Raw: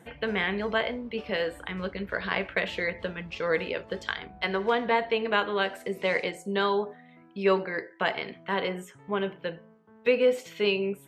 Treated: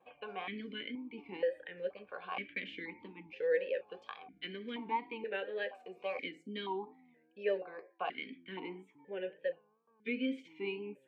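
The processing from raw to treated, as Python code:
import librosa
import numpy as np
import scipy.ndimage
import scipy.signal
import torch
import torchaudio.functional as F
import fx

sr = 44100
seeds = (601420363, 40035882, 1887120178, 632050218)

y = fx.notch_comb(x, sr, f0_hz=670.0)
y = fx.wow_flutter(y, sr, seeds[0], rate_hz=2.1, depth_cents=87.0)
y = fx.vowel_held(y, sr, hz=2.1)
y = y * 10.0 ** (1.5 / 20.0)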